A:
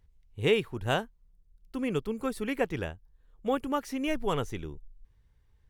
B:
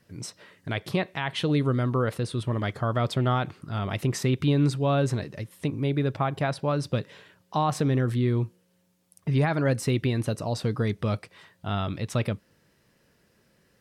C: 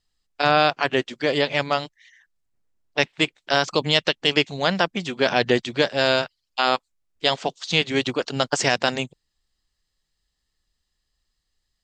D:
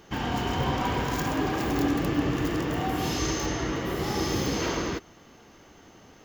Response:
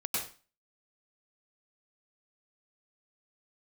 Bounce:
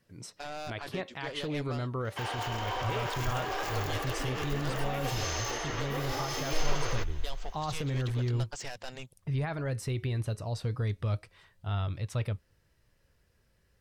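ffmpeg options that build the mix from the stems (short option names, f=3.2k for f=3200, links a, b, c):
-filter_complex "[0:a]adelay=2450,volume=-3dB[a];[1:a]volume=-3dB[b];[2:a]asoftclip=type=tanh:threshold=-18dB,volume=-13.5dB[c];[3:a]highpass=f=430:w=0.5412,highpass=f=430:w=1.3066,adelay=2050,volume=3dB[d];[b][d]amix=inputs=2:normalize=0,flanger=delay=1.7:depth=3.7:regen=90:speed=0.25:shape=triangular,alimiter=level_in=1dB:limit=-24dB:level=0:latency=1:release=21,volume=-1dB,volume=0dB[e];[a][c]amix=inputs=2:normalize=0,acompressor=threshold=-38dB:ratio=2.5,volume=0dB[f];[e][f]amix=inputs=2:normalize=0,asubboost=boost=10.5:cutoff=64"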